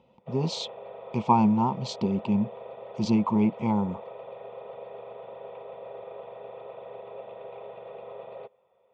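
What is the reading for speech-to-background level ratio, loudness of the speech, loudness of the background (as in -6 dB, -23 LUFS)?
16.0 dB, -26.5 LUFS, -42.5 LUFS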